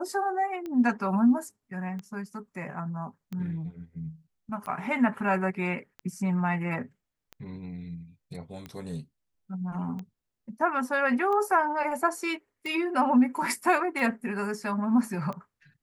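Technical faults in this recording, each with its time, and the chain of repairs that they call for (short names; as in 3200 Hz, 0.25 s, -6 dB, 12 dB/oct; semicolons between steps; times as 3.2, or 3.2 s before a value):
tick 45 rpm -25 dBFS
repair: de-click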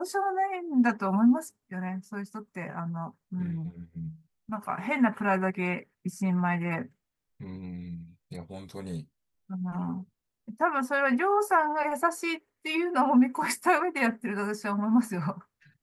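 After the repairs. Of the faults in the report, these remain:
none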